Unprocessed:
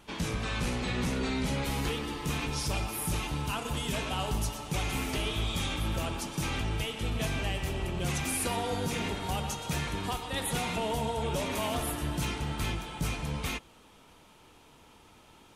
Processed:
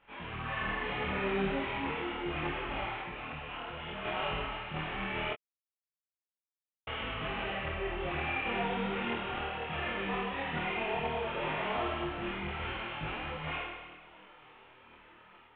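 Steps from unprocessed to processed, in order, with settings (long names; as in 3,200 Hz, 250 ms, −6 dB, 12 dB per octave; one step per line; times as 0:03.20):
variable-slope delta modulation 16 kbit/s
flutter between parallel walls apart 4.4 metres, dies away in 1.3 s
0:03.00–0:04.05: downward compressor 2.5 to 1, threshold −33 dBFS, peak gain reduction 5.5 dB
low-shelf EQ 300 Hz −9.5 dB
automatic gain control gain up to 4.5 dB
0:05.33–0:06.87: silence
micro pitch shift up and down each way 24 cents
level −4.5 dB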